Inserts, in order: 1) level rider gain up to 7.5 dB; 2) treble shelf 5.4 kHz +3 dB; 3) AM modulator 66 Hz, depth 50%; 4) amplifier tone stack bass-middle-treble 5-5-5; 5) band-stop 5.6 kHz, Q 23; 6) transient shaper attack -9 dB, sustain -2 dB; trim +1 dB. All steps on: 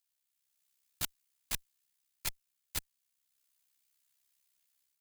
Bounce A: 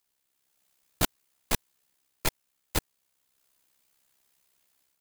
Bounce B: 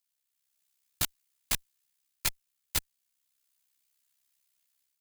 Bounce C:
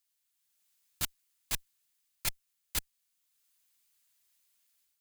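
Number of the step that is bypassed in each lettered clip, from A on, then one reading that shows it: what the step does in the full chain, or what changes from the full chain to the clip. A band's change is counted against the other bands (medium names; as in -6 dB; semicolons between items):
4, 8 kHz band -8.5 dB; 6, momentary loudness spread change -1 LU; 3, crest factor change -2.0 dB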